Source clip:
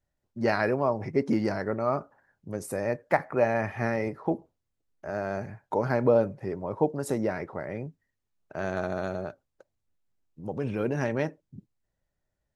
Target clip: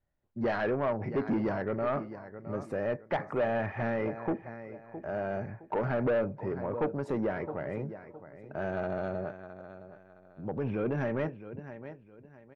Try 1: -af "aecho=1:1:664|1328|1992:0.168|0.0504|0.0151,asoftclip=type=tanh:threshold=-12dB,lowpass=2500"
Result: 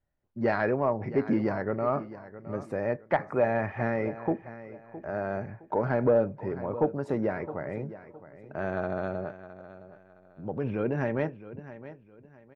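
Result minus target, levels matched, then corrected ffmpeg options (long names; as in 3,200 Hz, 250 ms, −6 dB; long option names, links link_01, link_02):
soft clipping: distortion −13 dB
-af "aecho=1:1:664|1328|1992:0.168|0.0504|0.0151,asoftclip=type=tanh:threshold=-23.5dB,lowpass=2500"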